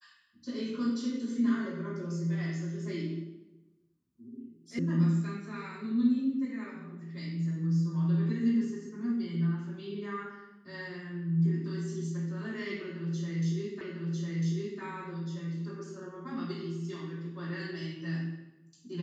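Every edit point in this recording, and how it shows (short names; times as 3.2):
4.79 sound cut off
13.81 repeat of the last 1 s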